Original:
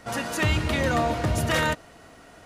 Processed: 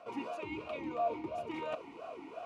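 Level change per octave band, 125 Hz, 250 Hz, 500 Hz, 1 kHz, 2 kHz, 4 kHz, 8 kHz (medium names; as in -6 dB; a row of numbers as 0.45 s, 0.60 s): -29.5 dB, -12.5 dB, -9.5 dB, -10.5 dB, -20.5 dB, -22.0 dB, under -30 dB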